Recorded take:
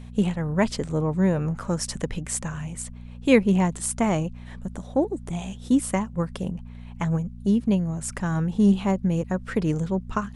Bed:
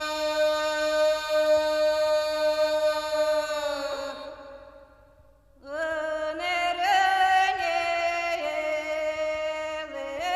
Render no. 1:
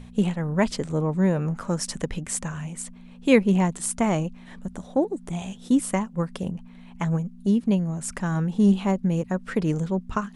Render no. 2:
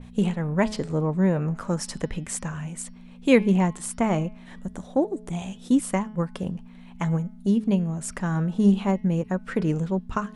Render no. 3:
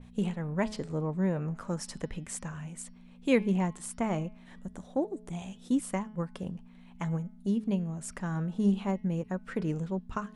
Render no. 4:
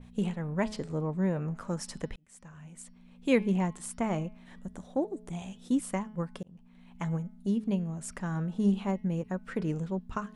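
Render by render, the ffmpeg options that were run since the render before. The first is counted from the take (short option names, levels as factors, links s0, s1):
-af "bandreject=f=60:t=h:w=4,bandreject=f=120:t=h:w=4"
-af "bandreject=f=213.8:t=h:w=4,bandreject=f=427.6:t=h:w=4,bandreject=f=641.4:t=h:w=4,bandreject=f=855.2:t=h:w=4,bandreject=f=1069:t=h:w=4,bandreject=f=1282.8:t=h:w=4,bandreject=f=1496.6:t=h:w=4,bandreject=f=1710.4:t=h:w=4,bandreject=f=1924.2:t=h:w=4,bandreject=f=2138:t=h:w=4,bandreject=f=2351.8:t=h:w=4,bandreject=f=2565.6:t=h:w=4,bandreject=f=2779.4:t=h:w=4,bandreject=f=2993.2:t=h:w=4,bandreject=f=3207:t=h:w=4,bandreject=f=3420.8:t=h:w=4,bandreject=f=3634.6:t=h:w=4,bandreject=f=3848.4:t=h:w=4,bandreject=f=4062.2:t=h:w=4,bandreject=f=4276:t=h:w=4,bandreject=f=4489.8:t=h:w=4,bandreject=f=4703.6:t=h:w=4,bandreject=f=4917.4:t=h:w=4,bandreject=f=5131.2:t=h:w=4,bandreject=f=5345:t=h:w=4,bandreject=f=5558.8:t=h:w=4,bandreject=f=5772.6:t=h:w=4,adynamicequalizer=threshold=0.00447:dfrequency=3500:dqfactor=0.7:tfrequency=3500:tqfactor=0.7:attack=5:release=100:ratio=0.375:range=3.5:mode=cutabove:tftype=highshelf"
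-af "volume=0.422"
-filter_complex "[0:a]asplit=3[s0][s1][s2];[s0]atrim=end=2.16,asetpts=PTS-STARTPTS,afade=t=out:st=2.156:d=0.004:c=hsin[s3];[s1]atrim=start=2.16:end=6.43,asetpts=PTS-STARTPTS,afade=t=in:d=1.15,afade=t=out:st=4.266:d=0.004:c=hsin[s4];[s2]atrim=start=6.43,asetpts=PTS-STARTPTS,afade=t=in:d=0.64:c=qsin[s5];[s3][s4][s5]concat=n=3:v=0:a=1"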